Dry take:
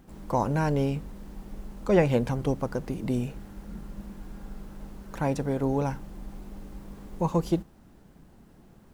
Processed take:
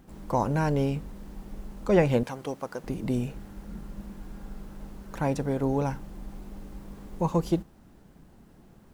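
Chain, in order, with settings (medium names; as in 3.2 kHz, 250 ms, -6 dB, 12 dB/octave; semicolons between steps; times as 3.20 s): 2.23–2.84 s: high-pass 630 Hz 6 dB/octave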